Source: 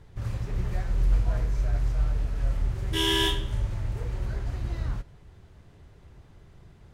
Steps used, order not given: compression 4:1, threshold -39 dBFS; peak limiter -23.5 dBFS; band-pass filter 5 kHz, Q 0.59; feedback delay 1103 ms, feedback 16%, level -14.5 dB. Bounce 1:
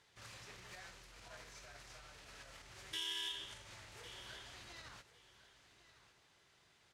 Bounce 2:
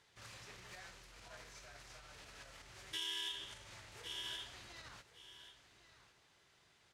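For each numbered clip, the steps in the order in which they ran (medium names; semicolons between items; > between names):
peak limiter > band-pass filter > compression > feedback delay; feedback delay > peak limiter > band-pass filter > compression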